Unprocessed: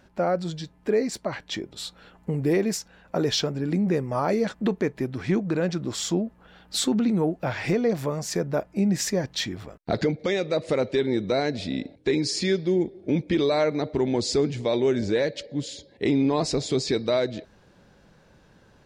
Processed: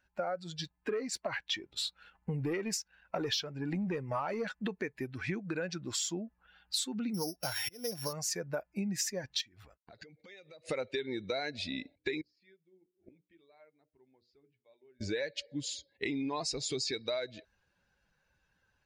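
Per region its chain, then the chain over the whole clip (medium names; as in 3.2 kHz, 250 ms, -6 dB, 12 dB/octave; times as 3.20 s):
0.59–4.52 s: treble shelf 8.6 kHz -9 dB + waveshaping leveller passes 1
7.14–8.13 s: sorted samples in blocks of 8 samples + slow attack 342 ms
9.41–10.66 s: gate -45 dBFS, range -10 dB + compression 16:1, threshold -37 dBFS
12.21–15.01 s: inverted gate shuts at -30 dBFS, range -24 dB + distance through air 240 m + hum notches 60/120/180/240/300/360/420/480/540/600 Hz
whole clip: expander on every frequency bin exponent 1.5; tilt shelf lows -6.5 dB, about 720 Hz; compression 6:1, threshold -34 dBFS; trim +1.5 dB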